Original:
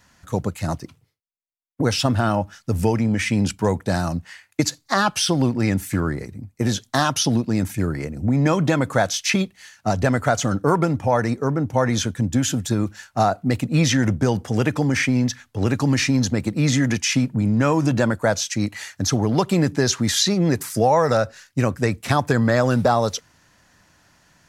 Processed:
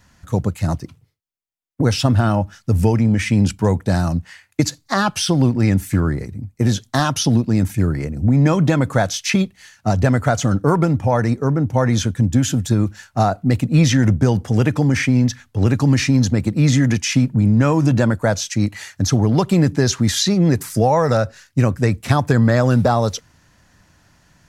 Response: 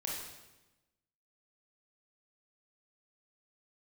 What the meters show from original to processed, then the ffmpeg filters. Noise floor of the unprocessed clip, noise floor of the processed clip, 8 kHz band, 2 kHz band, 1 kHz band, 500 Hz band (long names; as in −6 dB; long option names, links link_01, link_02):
−65 dBFS, −61 dBFS, 0.0 dB, 0.0 dB, +0.5 dB, +1.0 dB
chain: -af "lowshelf=frequency=190:gain=9"